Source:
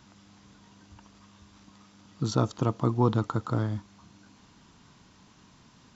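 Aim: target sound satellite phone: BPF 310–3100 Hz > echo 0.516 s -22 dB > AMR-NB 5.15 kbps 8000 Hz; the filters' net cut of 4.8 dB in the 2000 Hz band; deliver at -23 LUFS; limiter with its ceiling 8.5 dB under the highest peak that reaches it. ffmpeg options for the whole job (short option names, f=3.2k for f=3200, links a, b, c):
-af "equalizer=f=2k:t=o:g=-7.5,alimiter=limit=-18dB:level=0:latency=1,highpass=310,lowpass=3.1k,aecho=1:1:516:0.0794,volume=16dB" -ar 8000 -c:a libopencore_amrnb -b:a 5150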